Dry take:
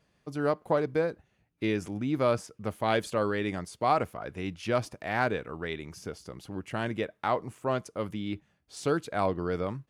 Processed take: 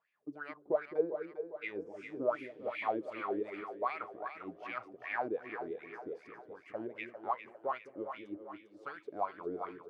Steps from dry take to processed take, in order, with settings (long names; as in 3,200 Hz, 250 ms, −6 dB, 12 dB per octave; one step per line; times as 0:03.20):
healed spectral selection 0:01.89–0:02.87, 1,700–9,800 Hz both
LFO wah 2.6 Hz 300–2,400 Hz, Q 6.9
on a send: echo with a time of its own for lows and highs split 420 Hz, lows 212 ms, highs 400 ms, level −8 dB
on the sum: level +2.5 dB